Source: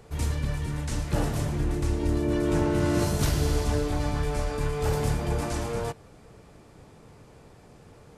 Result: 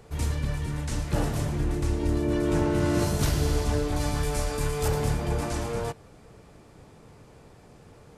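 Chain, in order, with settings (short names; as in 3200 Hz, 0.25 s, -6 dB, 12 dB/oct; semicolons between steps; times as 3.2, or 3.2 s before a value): 3.96–4.88 high shelf 5100 Hz +11.5 dB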